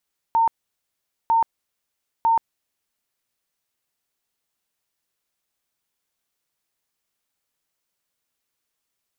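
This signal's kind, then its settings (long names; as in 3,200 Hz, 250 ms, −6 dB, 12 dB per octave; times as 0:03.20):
tone bursts 911 Hz, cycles 116, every 0.95 s, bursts 3, −14.5 dBFS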